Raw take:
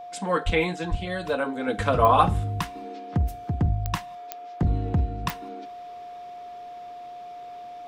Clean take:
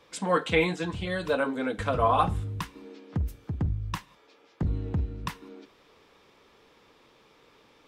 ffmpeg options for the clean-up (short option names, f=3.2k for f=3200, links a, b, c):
-filter_complex "[0:a]adeclick=t=4,bandreject=f=710:w=30,asplit=3[a][b][c];[a]afade=t=out:st=0.45:d=0.02[d];[b]highpass=f=140:w=0.5412,highpass=f=140:w=1.3066,afade=t=in:st=0.45:d=0.02,afade=t=out:st=0.57:d=0.02[e];[c]afade=t=in:st=0.57:d=0.02[f];[d][e][f]amix=inputs=3:normalize=0,asplit=3[g][h][i];[g]afade=t=out:st=0.9:d=0.02[j];[h]highpass=f=140:w=0.5412,highpass=f=140:w=1.3066,afade=t=in:st=0.9:d=0.02,afade=t=out:st=1.02:d=0.02[k];[i]afade=t=in:st=1.02:d=0.02[l];[j][k][l]amix=inputs=3:normalize=0,asetnsamples=n=441:p=0,asendcmd='1.68 volume volume -5dB',volume=0dB"